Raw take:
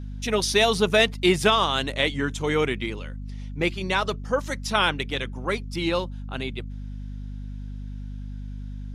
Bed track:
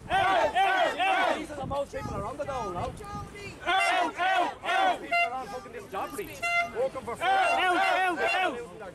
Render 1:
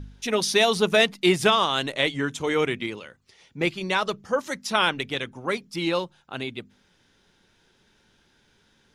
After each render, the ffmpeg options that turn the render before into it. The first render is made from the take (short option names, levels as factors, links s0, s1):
-af "bandreject=f=50:t=h:w=4,bandreject=f=100:t=h:w=4,bandreject=f=150:t=h:w=4,bandreject=f=200:t=h:w=4,bandreject=f=250:t=h:w=4"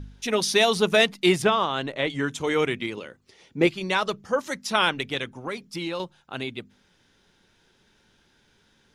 -filter_complex "[0:a]asettb=1/sr,asplit=3[s0][s1][s2];[s0]atrim=end=1.424[s3];[s1]atrim=start=1.42:end=2.1,asetpts=PTS-STARTPTS,afade=t=in:d=0.004:c=qsin,afade=t=out:st=0.676:d=0.004:c=qsin,lowpass=f=1700:p=1[s4];[s2]atrim=start=2.096[s5];[s3][s4]acrossfade=d=0.004:c1=hsin:c2=qsin[s6];[s6][s5]acrossfade=d=0.004:c1=qsin:c2=hsin,asettb=1/sr,asplit=3[s7][s8][s9];[s7]atrim=end=2.974[s10];[s8]atrim=start=2.97:end=3.67,asetpts=PTS-STARTPTS,afade=t=in:d=0.004:c=qsin,afade=t=out:st=0.696:d=0.004:c=qsin,equalizer=f=340:w=0.78:g=7.5[s11];[s9]atrim=start=3.666[s12];[s10][s11]acrossfade=d=0.004:c1=hsin:c2=qsin[s13];[s13][s12]acrossfade=d=0.004:c1=qsin:c2=hsin,asettb=1/sr,asplit=3[s14][s15][s16];[s14]atrim=end=5.394[s17];[s15]atrim=start=5.39:end=6,asetpts=PTS-STARTPTS,afade=t=in:d=0.004:c=qsin,afade=t=out:st=0.606:d=0.004:c=qsin,acompressor=threshold=0.0447:ratio=4:attack=3.2:release=140:knee=1:detection=peak[s18];[s16]atrim=start=5.996[s19];[s17][s18]acrossfade=d=0.004:c1=hsin:c2=qsin[s20];[s20][s19]acrossfade=d=0.004:c1=qsin:c2=hsin"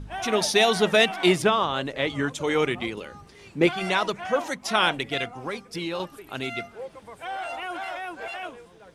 -filter_complex "[1:a]volume=0.376[s0];[0:a][s0]amix=inputs=2:normalize=0"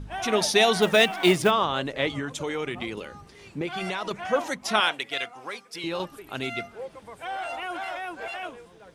-filter_complex "[0:a]asettb=1/sr,asplit=3[s0][s1][s2];[s0]atrim=end=0.824[s3];[s1]atrim=start=0.82:end=1.51,asetpts=PTS-STARTPTS,afade=t=in:d=0.004:c=qsin,afade=t=out:st=0.686:d=0.004:c=qsin,acrusher=bits=6:mode=log:mix=0:aa=0.000001[s4];[s2]atrim=start=1.506[s5];[s3][s4]acrossfade=d=0.004:c1=hsin:c2=qsin[s6];[s6][s5]acrossfade=d=0.004:c1=qsin:c2=hsin,asettb=1/sr,asplit=3[s7][s8][s9];[s7]atrim=end=2.184[s10];[s8]atrim=start=2.18:end=4.11,asetpts=PTS-STARTPTS,afade=t=in:d=0.004:c=qsin,afade=t=out:st=1.926:d=0.004:c=qsin,acompressor=threshold=0.0501:ratio=6:attack=3.2:release=140:knee=1:detection=peak[s11];[s9]atrim=start=4.106[s12];[s10][s11]acrossfade=d=0.004:c1=hsin:c2=qsin[s13];[s13][s12]acrossfade=d=0.004:c1=qsin:c2=hsin,asettb=1/sr,asplit=3[s14][s15][s16];[s14]atrim=end=4.804[s17];[s15]atrim=start=4.8:end=5.84,asetpts=PTS-STARTPTS,afade=t=in:d=0.004:c=qsin,afade=t=out:st=1.036:d=0.004:c=qsin,highpass=f=900:p=1[s18];[s16]atrim=start=5.836[s19];[s17][s18]acrossfade=d=0.004:c1=hsin:c2=qsin[s20];[s20][s19]acrossfade=d=0.004:c1=qsin:c2=hsin"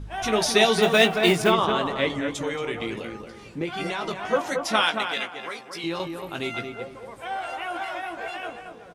-filter_complex "[0:a]asplit=2[s0][s1];[s1]adelay=18,volume=0.447[s2];[s0][s2]amix=inputs=2:normalize=0,asplit=2[s3][s4];[s4]adelay=226,lowpass=f=1700:p=1,volume=0.562,asplit=2[s5][s6];[s6]adelay=226,lowpass=f=1700:p=1,volume=0.34,asplit=2[s7][s8];[s8]adelay=226,lowpass=f=1700:p=1,volume=0.34,asplit=2[s9][s10];[s10]adelay=226,lowpass=f=1700:p=1,volume=0.34[s11];[s5][s7][s9][s11]amix=inputs=4:normalize=0[s12];[s3][s12]amix=inputs=2:normalize=0"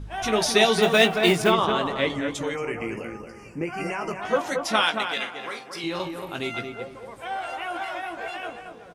-filter_complex "[0:a]asplit=3[s0][s1][s2];[s0]afade=t=out:st=2.54:d=0.02[s3];[s1]asuperstop=centerf=3700:order=8:qfactor=2,afade=t=in:st=2.54:d=0.02,afade=t=out:st=4.21:d=0.02[s4];[s2]afade=t=in:st=4.21:d=0.02[s5];[s3][s4][s5]amix=inputs=3:normalize=0,asettb=1/sr,asplit=3[s6][s7][s8];[s6]atrim=end=5.214[s9];[s7]atrim=start=5.21:end=6.36,asetpts=PTS-STARTPTS,afade=t=in:d=0.004:c=qsin,afade=t=out:st=1.146:d=0.004:c=qsin,asplit=2[s10][s11];[s11]adelay=46,volume=0.376[s12];[s10][s12]amix=inputs=2:normalize=0,atrim=end_sample=50715[s13];[s8]atrim=start=6.356[s14];[s9][s13]acrossfade=d=0.004:c1=hsin:c2=qsin[s15];[s15][s14]acrossfade=d=0.004:c1=qsin:c2=hsin"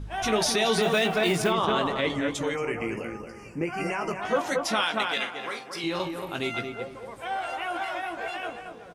-af "alimiter=limit=0.188:level=0:latency=1:release=31"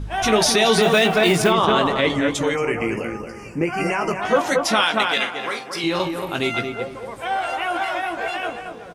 -af "volume=2.37"